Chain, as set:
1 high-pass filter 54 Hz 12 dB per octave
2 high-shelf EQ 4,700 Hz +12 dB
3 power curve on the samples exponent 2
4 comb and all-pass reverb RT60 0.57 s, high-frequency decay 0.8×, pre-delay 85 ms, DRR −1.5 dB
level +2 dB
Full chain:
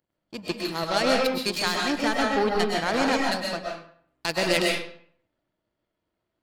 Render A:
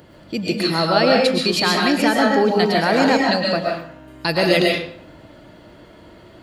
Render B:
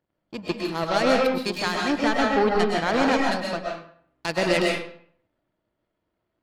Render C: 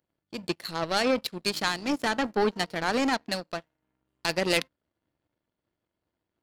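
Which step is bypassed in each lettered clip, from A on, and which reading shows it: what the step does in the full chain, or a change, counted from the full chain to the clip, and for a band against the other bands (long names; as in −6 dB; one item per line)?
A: 3, change in crest factor −5.5 dB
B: 2, 8 kHz band −6.0 dB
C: 4, change in crest factor +2.5 dB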